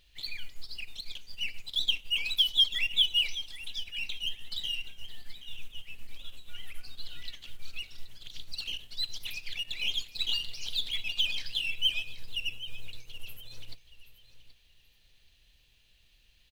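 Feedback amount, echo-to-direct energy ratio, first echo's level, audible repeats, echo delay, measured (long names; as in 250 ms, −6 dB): 26%, −14.0 dB, −14.5 dB, 2, 777 ms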